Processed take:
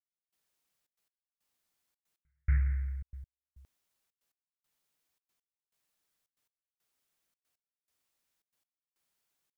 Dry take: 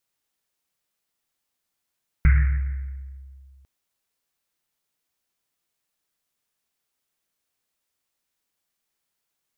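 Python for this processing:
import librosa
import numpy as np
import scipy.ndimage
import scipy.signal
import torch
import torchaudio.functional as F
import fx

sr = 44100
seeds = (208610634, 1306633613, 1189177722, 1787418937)

y = fx.step_gate(x, sr, bpm=139, pattern='...xxxxx.x', floor_db=-60.0, edge_ms=4.5)
y = y * librosa.db_to_amplitude(-2.0)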